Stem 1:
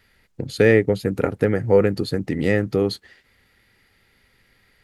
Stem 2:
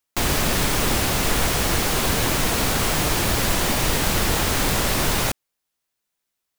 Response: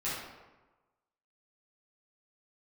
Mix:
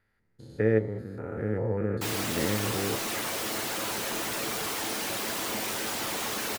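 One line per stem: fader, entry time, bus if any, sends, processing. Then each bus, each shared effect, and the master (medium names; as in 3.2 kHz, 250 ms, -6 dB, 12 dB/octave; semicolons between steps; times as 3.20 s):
-6.5 dB, 0.00 s, no send, spectrogram pixelated in time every 200 ms; resonant high shelf 2.1 kHz -7.5 dB, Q 1.5; level rider gain up to 4 dB
-2.5 dB, 1.85 s, no send, high-pass 220 Hz 24 dB/octave; whisper effect; hard clipper -21 dBFS, distortion -12 dB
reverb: none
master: feedback comb 110 Hz, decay 0.16 s, harmonics all, mix 70%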